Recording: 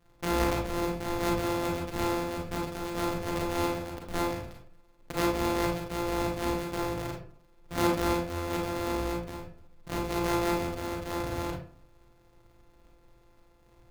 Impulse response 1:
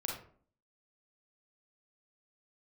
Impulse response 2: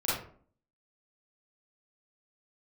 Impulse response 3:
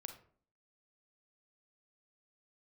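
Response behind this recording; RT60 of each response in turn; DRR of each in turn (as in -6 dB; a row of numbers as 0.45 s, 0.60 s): 1; 0.50 s, 0.50 s, 0.50 s; -1.5 dB, -10.0 dB, 6.0 dB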